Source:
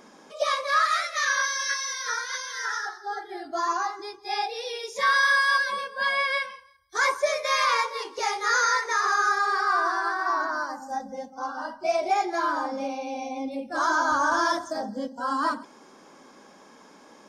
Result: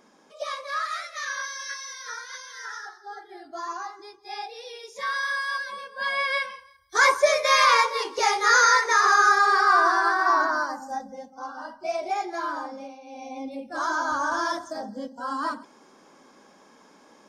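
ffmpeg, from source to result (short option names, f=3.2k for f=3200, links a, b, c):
-af "volume=16dB,afade=t=in:st=5.79:d=1.19:silence=0.251189,afade=t=out:st=10.39:d=0.77:silence=0.354813,afade=t=out:st=12.57:d=0.44:silence=0.316228,afade=t=in:st=13.01:d=0.35:silence=0.281838"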